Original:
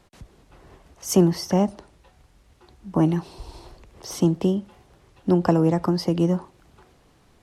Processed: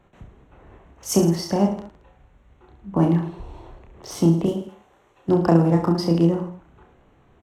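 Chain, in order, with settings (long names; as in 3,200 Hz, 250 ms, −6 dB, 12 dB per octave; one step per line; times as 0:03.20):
adaptive Wiener filter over 9 samples
0:01.18–0:01.61: downward compressor, threshold −17 dBFS, peak gain reduction 6 dB
0:04.46–0:05.29: bass and treble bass −15 dB, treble +9 dB
reverse bouncing-ball delay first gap 30 ms, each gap 1.2×, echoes 5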